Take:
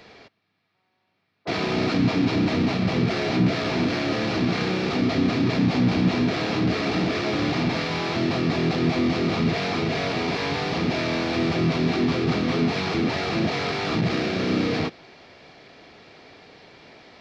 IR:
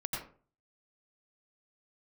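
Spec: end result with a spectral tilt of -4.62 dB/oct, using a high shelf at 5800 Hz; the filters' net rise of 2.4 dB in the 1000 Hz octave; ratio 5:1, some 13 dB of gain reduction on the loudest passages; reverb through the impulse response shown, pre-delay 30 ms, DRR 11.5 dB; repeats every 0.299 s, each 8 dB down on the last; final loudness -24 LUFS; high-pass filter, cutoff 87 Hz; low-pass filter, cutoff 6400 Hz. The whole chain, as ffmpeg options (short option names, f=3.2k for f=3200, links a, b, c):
-filter_complex "[0:a]highpass=87,lowpass=6.4k,equalizer=f=1k:t=o:g=3.5,highshelf=f=5.8k:g=-4.5,acompressor=threshold=-32dB:ratio=5,aecho=1:1:299|598|897|1196|1495:0.398|0.159|0.0637|0.0255|0.0102,asplit=2[a][b];[1:a]atrim=start_sample=2205,adelay=30[c];[b][c]afir=irnorm=-1:irlink=0,volume=-14.5dB[d];[a][d]amix=inputs=2:normalize=0,volume=9dB"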